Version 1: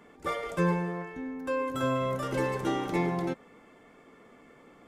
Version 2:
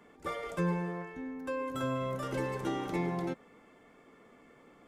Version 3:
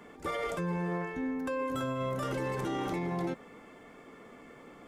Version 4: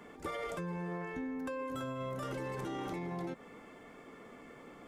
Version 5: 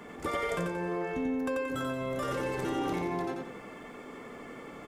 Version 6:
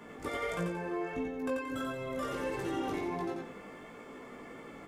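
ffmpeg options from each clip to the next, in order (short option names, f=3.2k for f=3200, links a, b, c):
-filter_complex "[0:a]acrossover=split=310[a][b];[b]acompressor=threshold=-29dB:ratio=6[c];[a][c]amix=inputs=2:normalize=0,volume=-3.5dB"
-af "alimiter=level_in=9dB:limit=-24dB:level=0:latency=1:release=24,volume=-9dB,volume=7dB"
-af "acompressor=threshold=-35dB:ratio=6,volume=-1dB"
-af "aecho=1:1:89|178|267|356|445:0.668|0.241|0.0866|0.0312|0.0112,volume=6dB"
-af "flanger=delay=17.5:depth=2.5:speed=1.5"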